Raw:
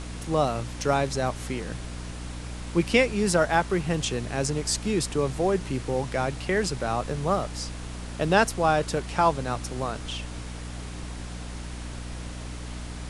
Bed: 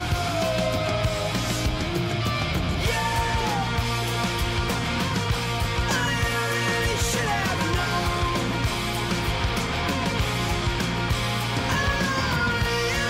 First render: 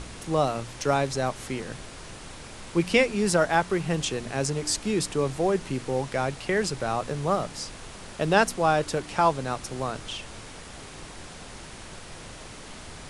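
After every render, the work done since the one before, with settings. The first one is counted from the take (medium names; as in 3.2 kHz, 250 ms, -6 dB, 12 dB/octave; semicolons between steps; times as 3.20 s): de-hum 60 Hz, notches 5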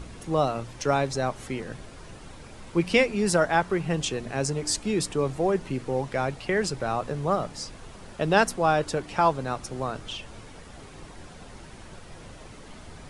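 noise reduction 8 dB, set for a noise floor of -43 dBFS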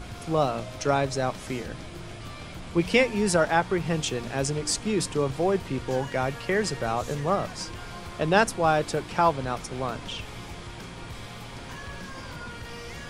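add bed -16.5 dB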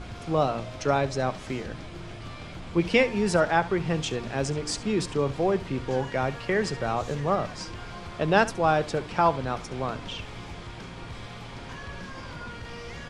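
distance through air 64 m; delay 70 ms -17.5 dB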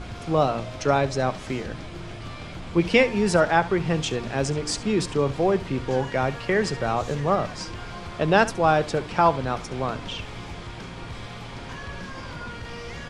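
trim +3 dB; peak limiter -3 dBFS, peak gain reduction 1.5 dB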